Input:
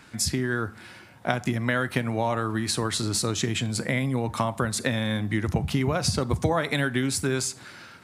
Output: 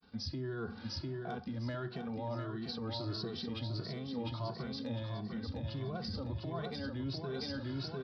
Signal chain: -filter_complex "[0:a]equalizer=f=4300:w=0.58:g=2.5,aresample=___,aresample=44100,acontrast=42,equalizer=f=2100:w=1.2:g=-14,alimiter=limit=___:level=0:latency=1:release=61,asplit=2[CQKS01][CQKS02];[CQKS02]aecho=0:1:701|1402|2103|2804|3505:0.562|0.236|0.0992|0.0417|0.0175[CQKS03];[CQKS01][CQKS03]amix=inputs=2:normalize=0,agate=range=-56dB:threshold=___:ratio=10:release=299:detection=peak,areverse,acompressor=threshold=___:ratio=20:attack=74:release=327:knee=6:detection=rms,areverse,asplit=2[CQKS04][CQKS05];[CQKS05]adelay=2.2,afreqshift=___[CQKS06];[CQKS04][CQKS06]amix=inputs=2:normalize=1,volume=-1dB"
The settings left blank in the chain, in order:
11025, -16dB, -47dB, -33dB, 1.5